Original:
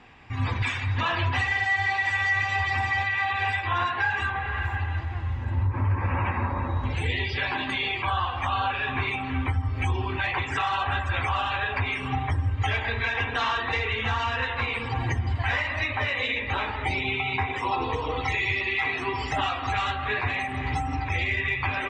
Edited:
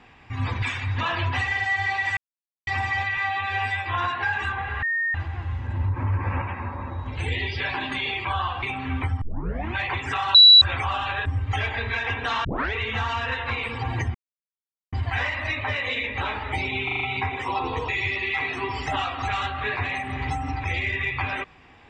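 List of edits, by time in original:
2.17–2.67 s: mute
3.17–3.62 s: stretch 1.5×
4.60–4.92 s: bleep 1.84 kHz -21.5 dBFS
6.19–6.95 s: gain -4.5 dB
8.40–9.07 s: delete
9.66 s: tape start 0.54 s
10.79–11.06 s: bleep 3.93 kHz -7 dBFS
11.70–12.36 s: delete
13.55 s: tape start 0.29 s
15.25 s: insert silence 0.78 s
17.17 s: stutter 0.04 s, 5 plays
18.05–18.33 s: delete

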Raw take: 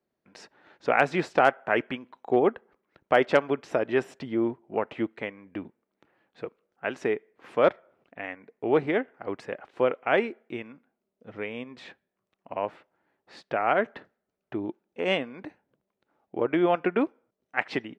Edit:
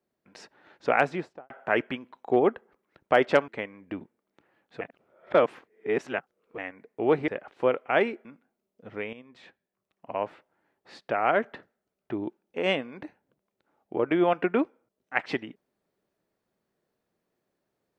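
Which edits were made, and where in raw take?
0.91–1.50 s: studio fade out
3.48–5.12 s: delete
6.45–8.22 s: reverse
8.92–9.45 s: delete
10.42–10.67 s: delete
11.55–12.60 s: fade in, from -12 dB

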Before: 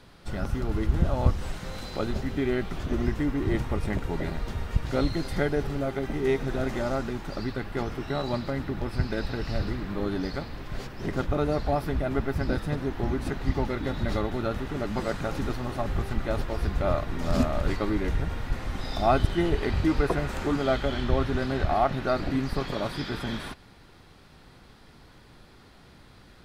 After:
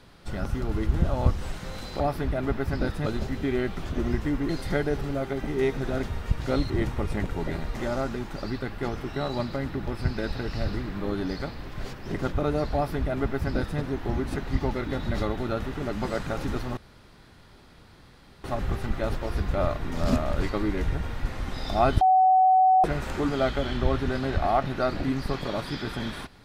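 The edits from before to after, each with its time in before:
3.43–4.48 s: swap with 5.15–6.69 s
11.68–12.74 s: copy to 2.00 s
15.71 s: insert room tone 1.67 s
19.28–20.11 s: bleep 751 Hz -15 dBFS

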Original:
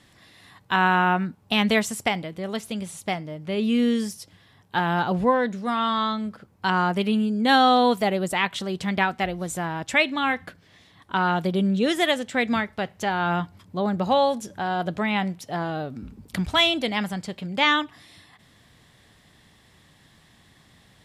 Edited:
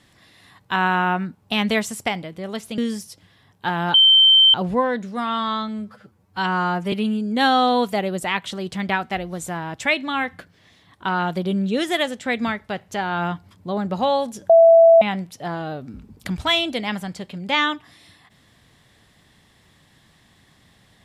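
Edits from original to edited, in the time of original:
2.78–3.88 s: delete
5.04 s: add tone 3.11 kHz -9 dBFS 0.60 s
6.18–7.01 s: stretch 1.5×
14.58–15.10 s: bleep 663 Hz -7 dBFS

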